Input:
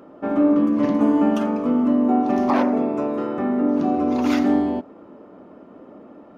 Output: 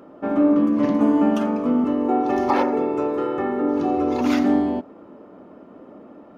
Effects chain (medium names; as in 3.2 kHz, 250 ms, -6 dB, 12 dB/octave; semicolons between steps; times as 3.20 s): 1.84–4.21 s: comb 2.3 ms, depth 68%